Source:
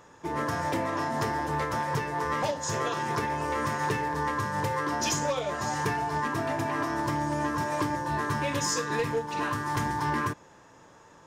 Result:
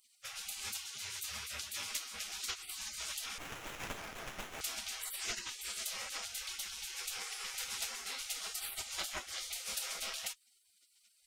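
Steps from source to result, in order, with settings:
0:00.64–0:01.91: high-pass filter 220 Hz 12 dB per octave
gate on every frequency bin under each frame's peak −30 dB weak
0:03.38–0:04.61: windowed peak hold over 9 samples
level +7.5 dB

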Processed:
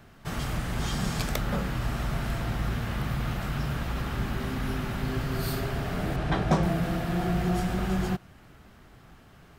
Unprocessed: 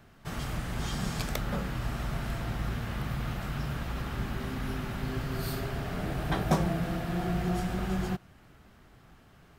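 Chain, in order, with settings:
0:06.16–0:06.63: high-frequency loss of the air 59 metres
in parallel at −5 dB: soft clipping −23.5 dBFS, distortion −17 dB

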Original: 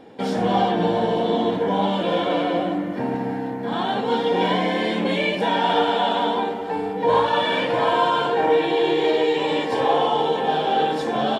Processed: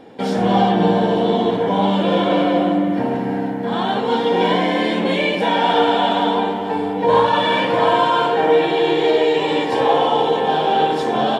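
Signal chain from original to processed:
convolution reverb RT60 3.3 s, pre-delay 51 ms, DRR 9 dB
level +3 dB

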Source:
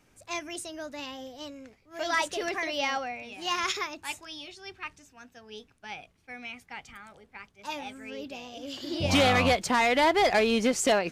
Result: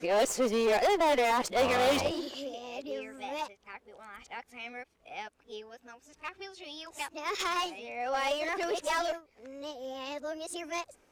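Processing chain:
played backwards from end to start
asymmetric clip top −30.5 dBFS, bottom −20.5 dBFS
octave-band graphic EQ 125/500/1,000 Hz −11/+7/+3 dB
level −3 dB

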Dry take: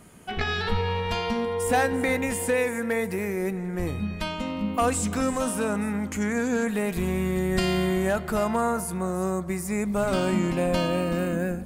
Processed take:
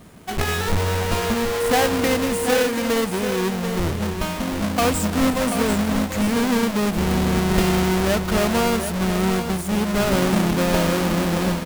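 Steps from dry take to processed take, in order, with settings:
each half-wave held at its own peak
single-tap delay 736 ms −8.5 dB

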